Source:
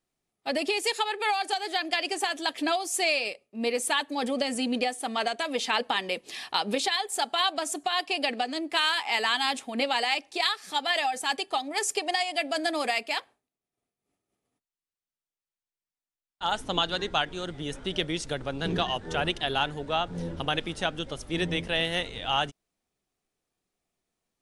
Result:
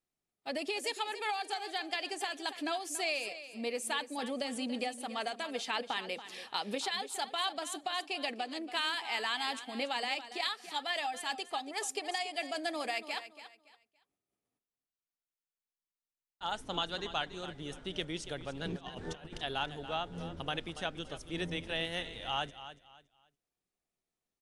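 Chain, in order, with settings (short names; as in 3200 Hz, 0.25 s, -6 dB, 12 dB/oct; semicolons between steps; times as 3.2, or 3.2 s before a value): 18.76–19.37 negative-ratio compressor -35 dBFS, ratio -0.5; feedback echo 0.283 s, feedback 27%, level -13 dB; gain -8.5 dB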